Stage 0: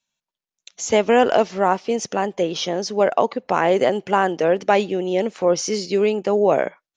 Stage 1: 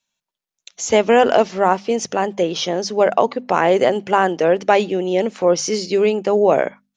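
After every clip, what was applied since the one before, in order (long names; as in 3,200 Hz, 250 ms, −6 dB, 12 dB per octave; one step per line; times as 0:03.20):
mains-hum notches 50/100/150/200/250 Hz
level +2.5 dB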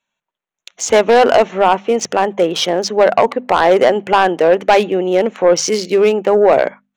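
adaptive Wiener filter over 9 samples
low-shelf EQ 300 Hz −8 dB
in parallel at +2.5 dB: sine wavefolder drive 6 dB, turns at −2 dBFS
on the sum: level −6.5 dB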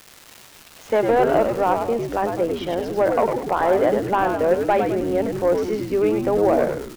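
low-pass filter 1,800 Hz 12 dB per octave
surface crackle 450 per second −23 dBFS
on a send: echo with shifted repeats 101 ms, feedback 45%, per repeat −87 Hz, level −5 dB
on the sum: level −8 dB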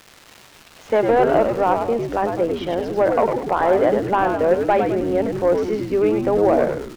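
high-shelf EQ 7,300 Hz −9.5 dB
level +1.5 dB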